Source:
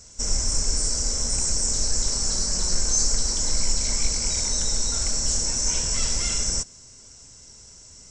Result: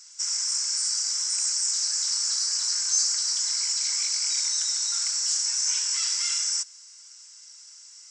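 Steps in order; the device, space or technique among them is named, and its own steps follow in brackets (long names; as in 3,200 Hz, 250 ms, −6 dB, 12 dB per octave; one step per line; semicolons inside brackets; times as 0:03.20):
headphones lying on a table (high-pass filter 1,200 Hz 24 dB per octave; parametric band 4,900 Hz +7.5 dB 0.21 octaves)
0:04.90–0:06.14: parametric band 200 Hz +13 dB 0.85 octaves
level −1.5 dB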